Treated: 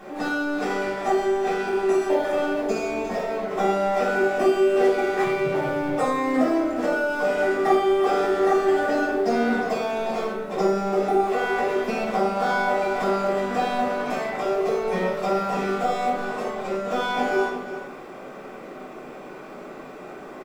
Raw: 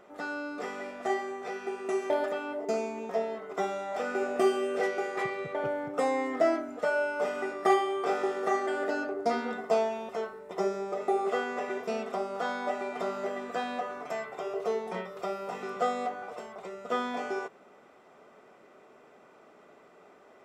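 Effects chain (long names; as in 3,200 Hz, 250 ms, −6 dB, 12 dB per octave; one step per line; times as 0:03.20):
mu-law and A-law mismatch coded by mu
on a send: single-tap delay 353 ms −13.5 dB
on the sum: downward compressor 3 to 1, threshold −28 dBFS, peak gain reduction 7.5 dB
rectangular room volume 650 cubic metres, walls furnished, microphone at 8.9 metres
level −1.5 dB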